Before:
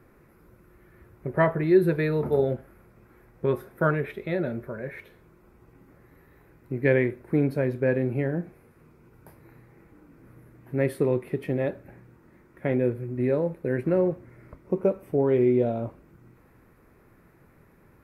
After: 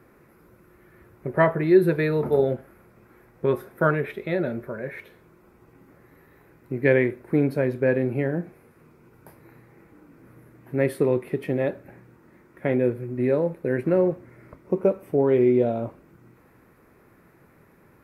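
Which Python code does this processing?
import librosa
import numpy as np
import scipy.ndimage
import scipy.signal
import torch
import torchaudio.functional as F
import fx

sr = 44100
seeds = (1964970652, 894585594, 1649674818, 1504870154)

y = fx.low_shelf(x, sr, hz=78.0, db=-11.5)
y = F.gain(torch.from_numpy(y), 3.0).numpy()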